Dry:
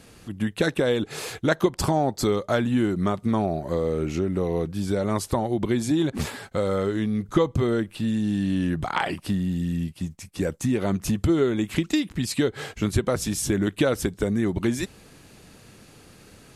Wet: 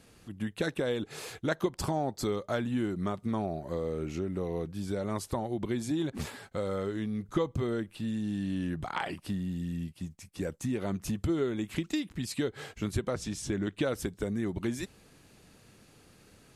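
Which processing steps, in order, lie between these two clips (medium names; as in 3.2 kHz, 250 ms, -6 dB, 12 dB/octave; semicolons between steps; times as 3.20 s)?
13.10–13.83 s: low-pass 7.3 kHz 12 dB/octave; trim -8.5 dB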